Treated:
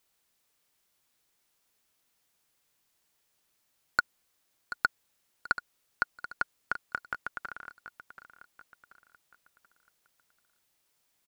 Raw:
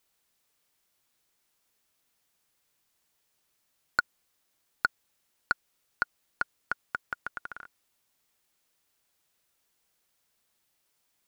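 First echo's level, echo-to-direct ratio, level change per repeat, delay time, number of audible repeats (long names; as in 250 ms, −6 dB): −13.0 dB, −12.0 dB, −8.0 dB, 733 ms, 3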